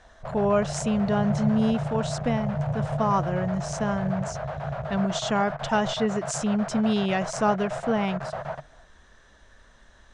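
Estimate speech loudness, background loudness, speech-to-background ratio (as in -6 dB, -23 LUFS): -26.5 LUFS, -32.0 LUFS, 5.5 dB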